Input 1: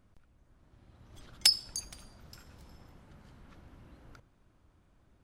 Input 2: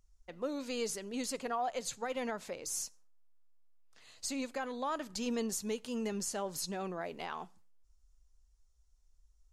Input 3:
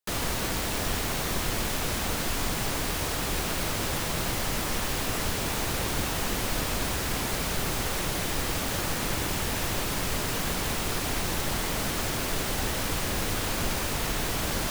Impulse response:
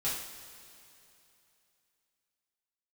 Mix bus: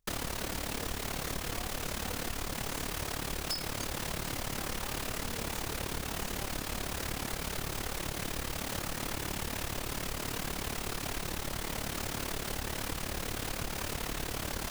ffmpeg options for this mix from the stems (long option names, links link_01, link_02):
-filter_complex "[0:a]asoftclip=type=hard:threshold=-20dB,adelay=2050,volume=-1dB[link_01];[1:a]volume=-12.5dB,asplit=2[link_02][link_03];[link_03]volume=-5.5dB[link_04];[2:a]tremolo=f=36:d=0.788,volume=2dB[link_05];[3:a]atrim=start_sample=2205[link_06];[link_04][link_06]afir=irnorm=-1:irlink=0[link_07];[link_01][link_02][link_05][link_07]amix=inputs=4:normalize=0,acompressor=threshold=-32dB:ratio=6"